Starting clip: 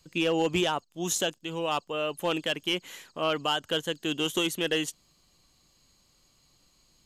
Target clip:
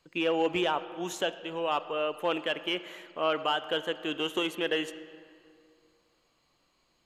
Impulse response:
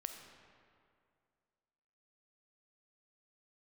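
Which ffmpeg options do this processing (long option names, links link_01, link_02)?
-filter_complex "[0:a]bass=frequency=250:gain=-12,treble=frequency=4000:gain=-9,asplit=2[link_01][link_02];[1:a]atrim=start_sample=2205,lowpass=3900[link_03];[link_02][link_03]afir=irnorm=-1:irlink=0,volume=-0.5dB[link_04];[link_01][link_04]amix=inputs=2:normalize=0,volume=-3.5dB"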